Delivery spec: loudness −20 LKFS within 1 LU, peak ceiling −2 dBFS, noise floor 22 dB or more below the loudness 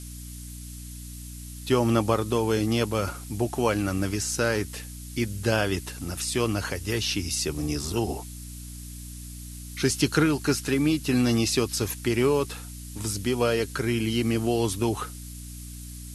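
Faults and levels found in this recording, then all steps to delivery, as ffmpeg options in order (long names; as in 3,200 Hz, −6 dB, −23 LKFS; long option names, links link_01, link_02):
mains hum 60 Hz; hum harmonics up to 300 Hz; level of the hum −37 dBFS; background noise floor −40 dBFS; target noise floor −48 dBFS; integrated loudness −26.0 LKFS; sample peak −7.0 dBFS; target loudness −20.0 LKFS
→ -af "bandreject=frequency=60:width_type=h:width=6,bandreject=frequency=120:width_type=h:width=6,bandreject=frequency=180:width_type=h:width=6,bandreject=frequency=240:width_type=h:width=6,bandreject=frequency=300:width_type=h:width=6"
-af "afftdn=noise_reduction=8:noise_floor=-40"
-af "volume=6dB,alimiter=limit=-2dB:level=0:latency=1"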